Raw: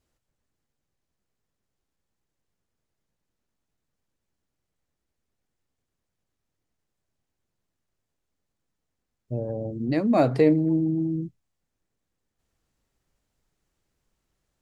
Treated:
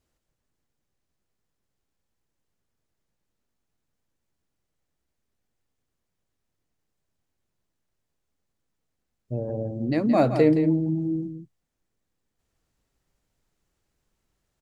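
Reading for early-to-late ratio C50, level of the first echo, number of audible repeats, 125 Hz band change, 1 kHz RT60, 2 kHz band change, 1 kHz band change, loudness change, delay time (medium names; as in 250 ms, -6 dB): no reverb, -9.0 dB, 1, +0.5 dB, no reverb, +0.5 dB, +0.5 dB, +0.5 dB, 170 ms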